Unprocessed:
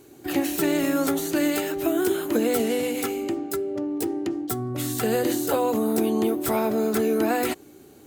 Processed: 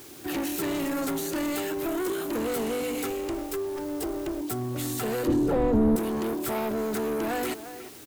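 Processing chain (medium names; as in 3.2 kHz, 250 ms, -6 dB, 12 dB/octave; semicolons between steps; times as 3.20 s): 3.10–4.41 s: comb filter that takes the minimum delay 2.5 ms; speakerphone echo 350 ms, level -17 dB; in parallel at -10 dB: word length cut 6-bit, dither triangular; on the sum: saturation -24 dBFS, distortion -9 dB; 5.27–5.96 s: tilt EQ -4.5 dB/octave; trim -2 dB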